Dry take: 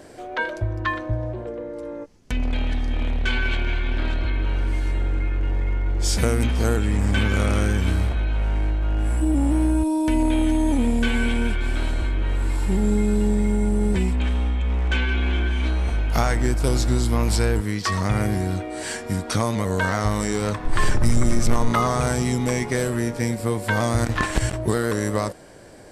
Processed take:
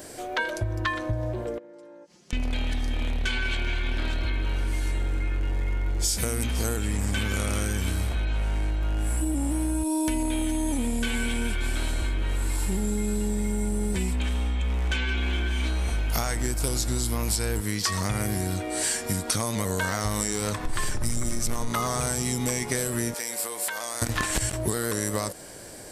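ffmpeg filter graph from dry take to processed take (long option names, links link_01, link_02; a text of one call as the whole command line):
ffmpeg -i in.wav -filter_complex "[0:a]asettb=1/sr,asplit=3[link_01][link_02][link_03];[link_01]atrim=end=1.584[link_04];[link_02]atrim=start=1.58:end=2.33,asetpts=PTS-STARTPTS,afade=type=in:duration=0.004:curve=qsin,afade=type=out:start_time=0.746:duration=0.004:curve=qsin,aecho=1:1:5.6:0.75,atrim=end_sample=33075,acompressor=threshold=-44dB:ratio=10:attack=3.2:release=140:knee=1:detection=peak,highpass=160,lowpass=6400[link_05];[link_03]atrim=start=2.326[link_06];[link_04][link_05]acrossfade=duration=0.004:curve1=hsin:curve2=qsin[link_07];[link_07][link_06]acrossfade=duration=0.004:curve1=qsin:curve2=hsin,asettb=1/sr,asplit=3[link_08][link_09][link_10];[link_08]atrim=end=23.144[link_11];[link_09]atrim=start=23.14:end=24.02,asetpts=PTS-STARTPTS,afade=type=in:duration=0.004:curve=qsin,afade=type=out:start_time=0.876:duration=0.004:curve=qsin,highpass=600,acompressor=threshold=-32dB:ratio=5:attack=3.2:release=140:knee=1:detection=peak[link_12];[link_10]atrim=start=24.016[link_13];[link_11][link_12]acrossfade=duration=0.004:curve1=hsin:curve2=qsin[link_14];[link_14][link_13]acrossfade=duration=0.004:curve1=qsin:curve2=hsin,aemphasis=mode=production:type=75kf,acompressor=threshold=-23dB:ratio=6" out.wav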